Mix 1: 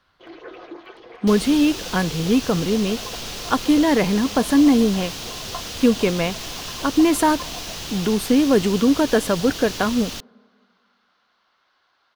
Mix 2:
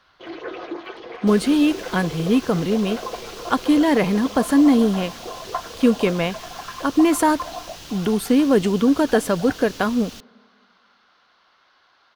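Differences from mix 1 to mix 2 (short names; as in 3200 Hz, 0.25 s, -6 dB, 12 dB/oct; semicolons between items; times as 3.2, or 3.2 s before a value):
first sound +6.5 dB; second sound -8.0 dB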